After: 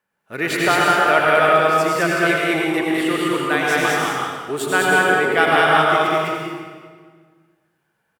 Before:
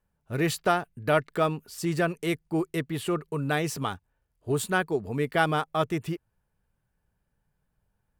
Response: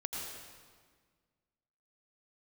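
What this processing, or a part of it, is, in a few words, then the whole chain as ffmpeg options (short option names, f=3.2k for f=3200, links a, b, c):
stadium PA: -filter_complex "[0:a]highpass=240,equalizer=f=1.9k:t=o:w=1.7:g=8,aecho=1:1:204.1|242:0.891|0.316[a];[1:a]atrim=start_sample=2205[b];[a][b]afir=irnorm=-1:irlink=0,volume=4dB"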